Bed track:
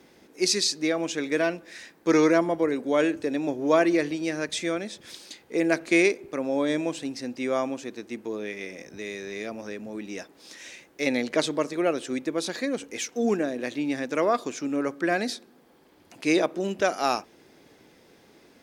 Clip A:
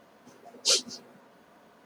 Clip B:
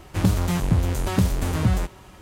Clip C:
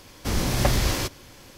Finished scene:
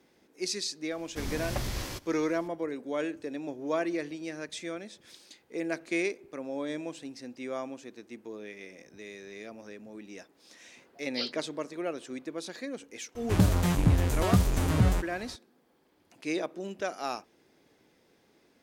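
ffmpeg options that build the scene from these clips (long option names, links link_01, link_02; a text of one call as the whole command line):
ffmpeg -i bed.wav -i cue0.wav -i cue1.wav -i cue2.wav -filter_complex "[0:a]volume=-9.5dB[link_01];[1:a]aresample=11025,aresample=44100[link_02];[3:a]atrim=end=1.57,asetpts=PTS-STARTPTS,volume=-11.5dB,afade=type=in:duration=0.004:curve=hsin,afade=type=out:start_time=1.566:duration=0.004:curve=hsin,adelay=910[link_03];[link_02]atrim=end=1.85,asetpts=PTS-STARTPTS,volume=-9dB,afade=type=in:duration=0.004:curve=hsin,afade=type=out:start_time=1.846:duration=0.004:curve=hsin,adelay=463050S[link_04];[2:a]atrim=end=2.21,asetpts=PTS-STARTPTS,volume=-3dB,afade=type=in:duration=0.004:curve=hsin,afade=type=out:start_time=2.206:duration=0.004:curve=hsin,adelay=13150[link_05];[link_01][link_03][link_04][link_05]amix=inputs=4:normalize=0" out.wav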